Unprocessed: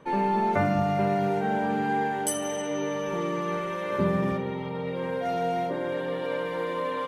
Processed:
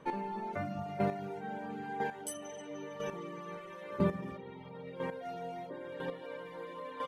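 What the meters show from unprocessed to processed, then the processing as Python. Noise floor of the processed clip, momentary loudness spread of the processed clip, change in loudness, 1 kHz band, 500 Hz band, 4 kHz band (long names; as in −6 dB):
−48 dBFS, 11 LU, −12.0 dB, −12.5 dB, −12.0 dB, −12.5 dB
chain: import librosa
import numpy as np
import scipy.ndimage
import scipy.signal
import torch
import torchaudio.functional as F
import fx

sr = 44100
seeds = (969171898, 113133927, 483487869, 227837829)

y = fx.dereverb_blind(x, sr, rt60_s=0.8)
y = fx.chopper(y, sr, hz=1.0, depth_pct=65, duty_pct=10)
y = y * librosa.db_to_amplitude(-3.0)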